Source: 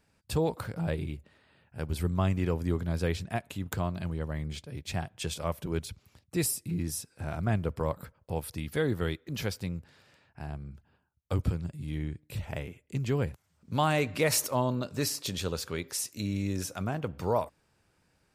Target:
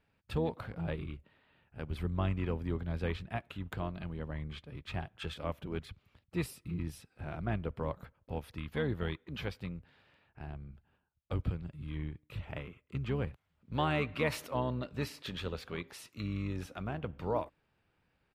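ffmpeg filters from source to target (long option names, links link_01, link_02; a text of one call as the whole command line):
ffmpeg -i in.wav -filter_complex "[0:a]highshelf=frequency=4500:width_type=q:width=1.5:gain=-12,asplit=2[link_01][link_02];[link_02]asetrate=22050,aresample=44100,atempo=2,volume=-9dB[link_03];[link_01][link_03]amix=inputs=2:normalize=0,volume=-6dB" out.wav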